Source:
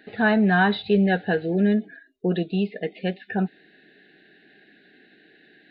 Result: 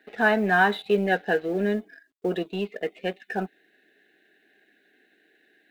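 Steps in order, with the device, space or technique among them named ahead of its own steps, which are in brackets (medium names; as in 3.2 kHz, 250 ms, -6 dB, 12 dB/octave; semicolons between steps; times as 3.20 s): phone line with mismatched companding (band-pass 320–3600 Hz; companding laws mixed up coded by A); trim +1.5 dB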